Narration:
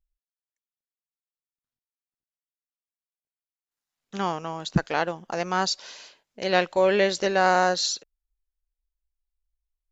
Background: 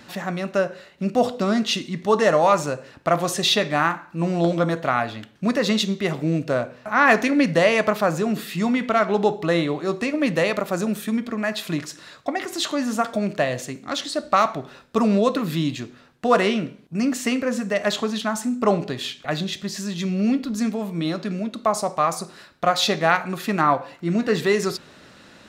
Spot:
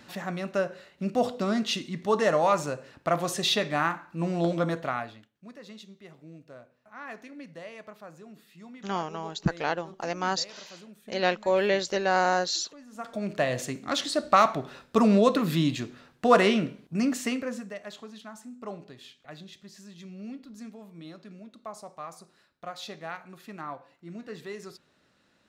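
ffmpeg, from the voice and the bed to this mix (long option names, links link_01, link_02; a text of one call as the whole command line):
ffmpeg -i stem1.wav -i stem2.wav -filter_complex "[0:a]adelay=4700,volume=-3.5dB[link_01];[1:a]volume=18dB,afade=type=out:start_time=4.73:duration=0.57:silence=0.105925,afade=type=in:start_time=12.91:duration=0.74:silence=0.0630957,afade=type=out:start_time=16.76:duration=1.05:silence=0.125893[link_02];[link_01][link_02]amix=inputs=2:normalize=0" out.wav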